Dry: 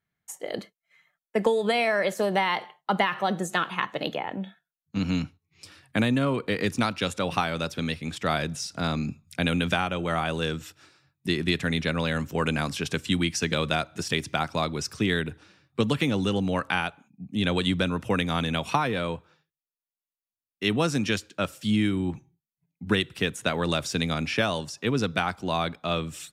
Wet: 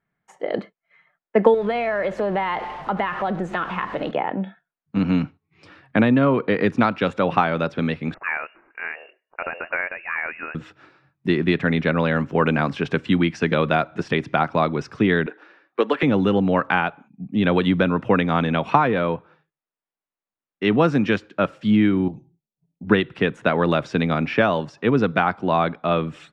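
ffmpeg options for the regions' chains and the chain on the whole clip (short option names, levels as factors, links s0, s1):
-filter_complex "[0:a]asettb=1/sr,asplit=3[s0][s1][s2];[s0]atrim=end=1.544[s3];[s1]atrim=start=1.54:end=4.11,asetpts=PTS-STARTPTS,afade=t=in:d=0.004:c=qsin,afade=t=out:st=2.566:d=0.004:c=qsin,aeval=exprs='val(0)+0.5*0.0168*sgn(val(0))':c=same,acompressor=threshold=0.0251:ratio=2:attack=3.2:release=140:knee=1:detection=peak,aeval=exprs='val(0)+0.002*(sin(2*PI*50*n/s)+sin(2*PI*2*50*n/s)/2+sin(2*PI*3*50*n/s)/3+sin(2*PI*4*50*n/s)/4+sin(2*PI*5*50*n/s)/5)':c=same[s4];[s2]atrim=start=4.106[s5];[s3][s4]acrossfade=d=0.004:c1=hsin:c2=qsin[s6];[s6][s5]acrossfade=d=0.004:c1=qsin:c2=hsin,asettb=1/sr,asplit=3[s7][s8][s9];[s7]atrim=end=8.144[s10];[s8]atrim=start=8.14:end=10.55,asetpts=PTS-STARTPTS,afade=t=in:d=0.004:c=qsin,afade=t=out:st=2.406:d=0.004:c=qsin,highpass=760,highshelf=f=2200:g=-9.5,lowpass=f=2600:t=q:w=0.5098,lowpass=f=2600:t=q:w=0.6013,lowpass=f=2600:t=q:w=0.9,lowpass=f=2600:t=q:w=2.563,afreqshift=-3000[s11];[s9]atrim=start=10.546[s12];[s10][s11]acrossfade=d=0.004:c1=hsin:c2=qsin[s13];[s13][s12]acrossfade=d=0.004:c1=qsin:c2=hsin,asettb=1/sr,asplit=3[s14][s15][s16];[s14]atrim=end=15.264[s17];[s15]atrim=start=15.26:end=16.03,asetpts=PTS-STARTPTS,afade=t=in:d=0.004:c=qsin,afade=t=out:st=0.766:d=0.004:c=qsin,highpass=f=330:w=0.5412,highpass=f=330:w=1.3066,equalizer=f=1700:t=o:w=0.41:g=5[s18];[s16]atrim=start=16.026[s19];[s17][s18]acrossfade=d=0.004:c1=hsin:c2=qsin[s20];[s20][s19]acrossfade=d=0.004:c1=qsin:c2=hsin,asettb=1/sr,asplit=3[s21][s22][s23];[s21]atrim=end=22.084[s24];[s22]atrim=start=22.08:end=22.85,asetpts=PTS-STARTPTS,afade=t=in:d=0.004:c=qsin,afade=t=out:st=0.766:d=0.004:c=qsin,volume=35.5,asoftclip=hard,volume=0.0282,acompressor=threshold=0.0112:ratio=3:attack=3.2:release=140:knee=1:detection=peak,asuperstop=centerf=1600:order=4:qfactor=0.54[s25];[s23]atrim=start=22.846[s26];[s24][s25]acrossfade=d=0.004:c1=hsin:c2=qsin[s27];[s27][s26]acrossfade=d=0.004:c1=qsin:c2=hsin,lowpass=1800,equalizer=f=74:w=1.2:g=-11.5,volume=2.66"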